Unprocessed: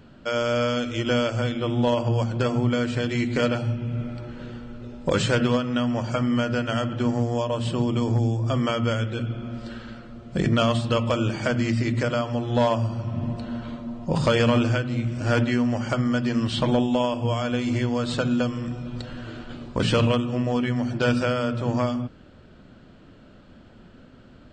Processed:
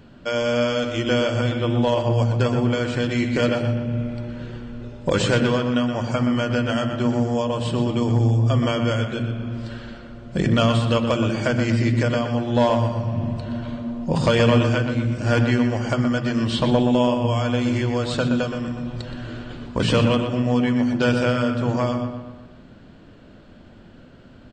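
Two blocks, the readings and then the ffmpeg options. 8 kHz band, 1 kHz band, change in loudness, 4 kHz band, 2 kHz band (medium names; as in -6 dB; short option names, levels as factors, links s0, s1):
+2.0 dB, +2.5 dB, +3.0 dB, +2.5 dB, +2.5 dB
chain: -filter_complex "[0:a]bandreject=f=1300:w=17,asplit=2[s0][s1];[s1]adelay=122,lowpass=f=3600:p=1,volume=0.447,asplit=2[s2][s3];[s3]adelay=122,lowpass=f=3600:p=1,volume=0.53,asplit=2[s4][s5];[s5]adelay=122,lowpass=f=3600:p=1,volume=0.53,asplit=2[s6][s7];[s7]adelay=122,lowpass=f=3600:p=1,volume=0.53,asplit=2[s8][s9];[s9]adelay=122,lowpass=f=3600:p=1,volume=0.53,asplit=2[s10][s11];[s11]adelay=122,lowpass=f=3600:p=1,volume=0.53[s12];[s0][s2][s4][s6][s8][s10][s12]amix=inputs=7:normalize=0,volume=1.26"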